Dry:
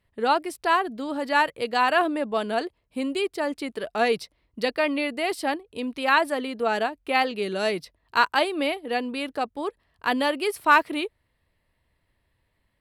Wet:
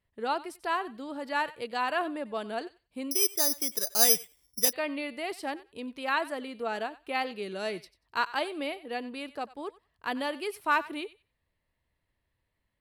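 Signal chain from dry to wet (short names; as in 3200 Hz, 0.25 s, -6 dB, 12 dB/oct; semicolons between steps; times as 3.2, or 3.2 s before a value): thinning echo 93 ms, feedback 19%, high-pass 1000 Hz, level -16 dB; 3.11–4.73 careless resampling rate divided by 8×, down filtered, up zero stuff; gain -8.5 dB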